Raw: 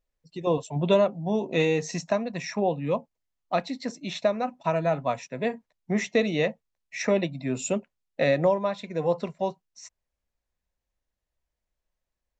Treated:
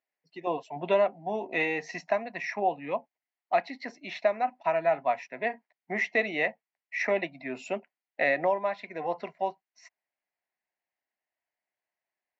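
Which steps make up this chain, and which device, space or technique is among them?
phone earpiece (speaker cabinet 420–4300 Hz, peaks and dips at 500 Hz -9 dB, 730 Hz +5 dB, 1200 Hz -5 dB, 2000 Hz +7 dB, 3600 Hz -10 dB)

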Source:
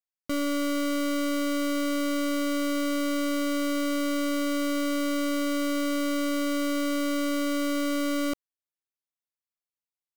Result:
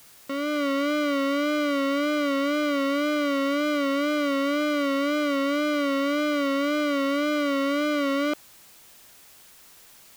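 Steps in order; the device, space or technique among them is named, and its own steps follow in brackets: dictaphone (BPF 310–3700 Hz; AGC gain up to 5.5 dB; wow and flutter 72 cents; white noise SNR 26 dB)

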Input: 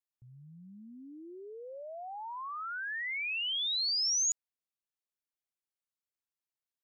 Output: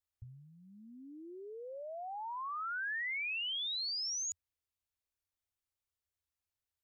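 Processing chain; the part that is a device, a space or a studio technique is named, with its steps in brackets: car stereo with a boomy subwoofer (resonant low shelf 120 Hz +10.5 dB, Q 3; limiter -34.5 dBFS, peak gain reduction 9 dB)

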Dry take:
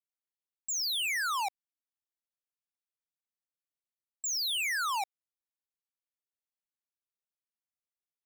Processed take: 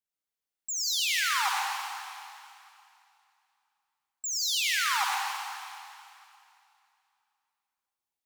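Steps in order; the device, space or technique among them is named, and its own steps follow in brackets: stairwell (reverb RT60 2.5 s, pre-delay 66 ms, DRR -2 dB)

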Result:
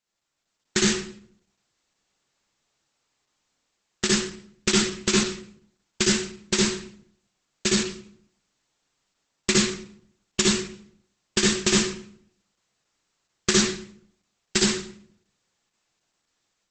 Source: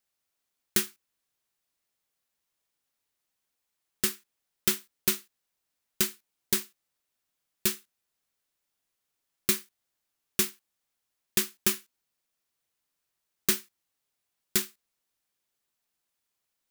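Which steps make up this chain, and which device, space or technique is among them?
speakerphone in a meeting room (reverb RT60 0.60 s, pre-delay 54 ms, DRR -3.5 dB; AGC gain up to 6.5 dB; gain +1 dB; Opus 12 kbps 48000 Hz)

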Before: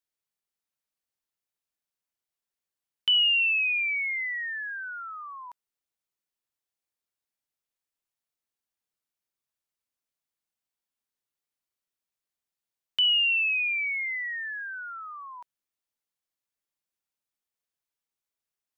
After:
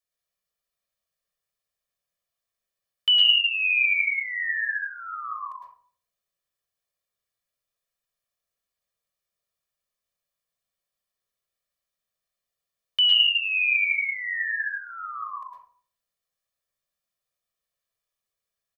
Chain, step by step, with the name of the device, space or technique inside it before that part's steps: microphone above a desk (comb 1.7 ms, depth 72%; reverb RT60 0.50 s, pre-delay 0.104 s, DRR -2 dB); 13.27–13.75 steep low-pass 3800 Hz 96 dB/oct; gain -1.5 dB

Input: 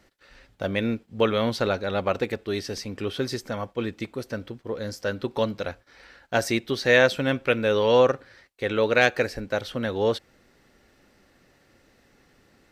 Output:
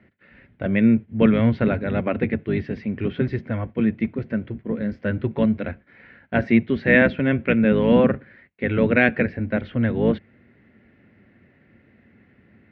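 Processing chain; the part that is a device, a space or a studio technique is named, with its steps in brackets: sub-octave bass pedal (octaver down 1 oct, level 0 dB; speaker cabinet 83–2400 Hz, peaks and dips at 96 Hz +3 dB, 220 Hz +9 dB, 510 Hz -4 dB, 840 Hz -8 dB, 1200 Hz -8 dB, 2100 Hz +4 dB); gain +3 dB

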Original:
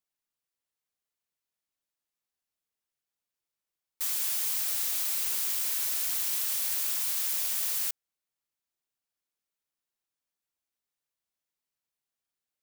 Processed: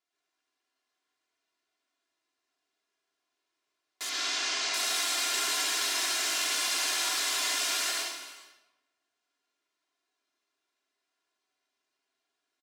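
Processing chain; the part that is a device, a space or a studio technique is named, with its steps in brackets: supermarket ceiling speaker (BPF 220–5500 Hz; reverb RT60 1.0 s, pre-delay 97 ms, DRR -4 dB); 4.09–4.74 LPF 6600 Hz 24 dB/oct; comb 2.9 ms, depth 79%; non-linear reverb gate 0.5 s falling, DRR 5.5 dB; gain +3.5 dB

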